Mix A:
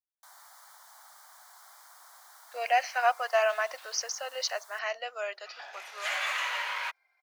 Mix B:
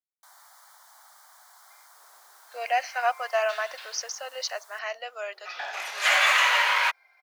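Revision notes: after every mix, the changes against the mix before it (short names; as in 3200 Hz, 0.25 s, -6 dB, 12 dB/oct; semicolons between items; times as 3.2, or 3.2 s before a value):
second sound +11.0 dB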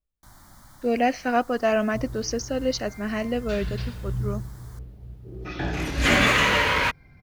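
speech: entry -1.70 s; master: remove steep high-pass 660 Hz 36 dB/oct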